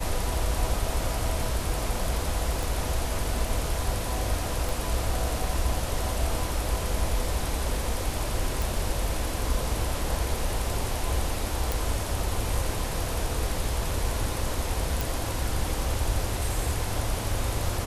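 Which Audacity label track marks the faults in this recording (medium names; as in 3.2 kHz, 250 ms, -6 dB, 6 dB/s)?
2.630000	2.630000	pop
4.690000	4.690000	pop
8.620000	8.620000	pop
11.720000	11.720000	pop
15.010000	15.010000	pop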